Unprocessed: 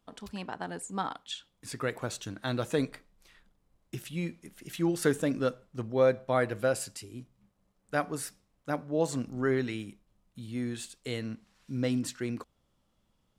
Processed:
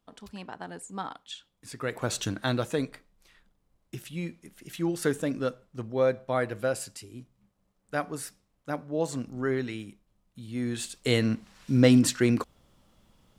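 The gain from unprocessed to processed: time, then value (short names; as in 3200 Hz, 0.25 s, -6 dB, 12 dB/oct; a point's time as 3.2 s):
1.77 s -2.5 dB
2.23 s +9.5 dB
2.78 s -0.5 dB
10.43 s -0.5 dB
11.12 s +11 dB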